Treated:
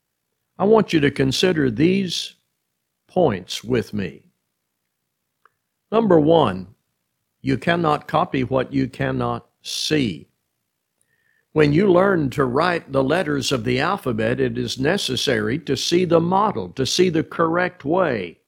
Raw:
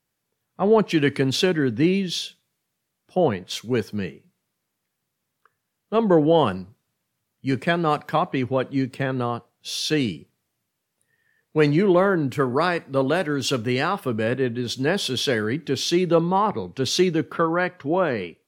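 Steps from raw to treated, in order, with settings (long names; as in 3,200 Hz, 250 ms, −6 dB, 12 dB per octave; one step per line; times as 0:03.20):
amplitude modulation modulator 60 Hz, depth 35%
level +5 dB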